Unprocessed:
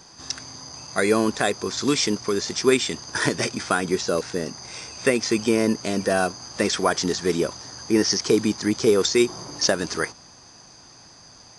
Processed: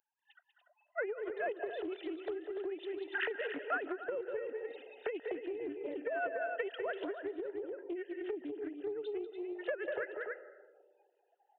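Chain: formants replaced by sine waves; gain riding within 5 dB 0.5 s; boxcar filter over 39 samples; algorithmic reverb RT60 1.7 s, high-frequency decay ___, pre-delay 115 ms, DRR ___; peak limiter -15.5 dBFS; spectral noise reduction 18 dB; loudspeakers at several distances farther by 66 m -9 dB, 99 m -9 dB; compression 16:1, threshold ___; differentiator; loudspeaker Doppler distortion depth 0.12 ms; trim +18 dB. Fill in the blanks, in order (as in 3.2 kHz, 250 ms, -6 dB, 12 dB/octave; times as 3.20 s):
0.3×, 16 dB, -29 dBFS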